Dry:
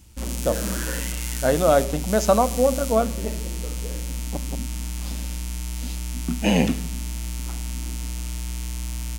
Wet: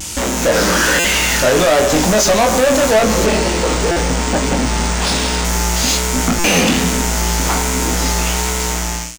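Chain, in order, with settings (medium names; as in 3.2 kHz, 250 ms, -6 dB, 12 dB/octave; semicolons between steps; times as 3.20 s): fade out at the end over 1.35 s; peaking EQ 6.7 kHz +8 dB 1 oct; compression, threshold -30 dBFS, peak gain reduction 17 dB; bass shelf 61 Hz +11 dB; level rider gain up to 10 dB; overdrive pedal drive 35 dB, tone 7 kHz, clips at -6.5 dBFS; vibrato 1.2 Hz 58 cents; doubling 23 ms -6 dB; buffer glitch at 0.99/3.91/6.39 s, samples 256, times 8; 3.26–5.45 s: decimation joined by straight lines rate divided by 3×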